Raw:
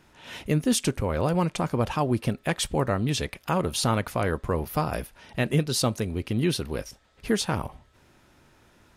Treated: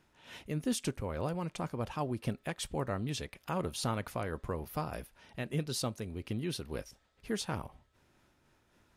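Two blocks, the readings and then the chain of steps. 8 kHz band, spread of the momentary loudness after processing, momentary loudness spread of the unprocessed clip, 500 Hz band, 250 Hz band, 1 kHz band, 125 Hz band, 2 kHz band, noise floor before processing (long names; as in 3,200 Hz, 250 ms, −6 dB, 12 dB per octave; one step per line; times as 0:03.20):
−10.5 dB, 9 LU, 10 LU, −10.5 dB, −10.5 dB, −10.0 dB, −10.5 dB, −11.0 dB, −60 dBFS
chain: amplitude modulation by smooth noise, depth 55%
level −7.5 dB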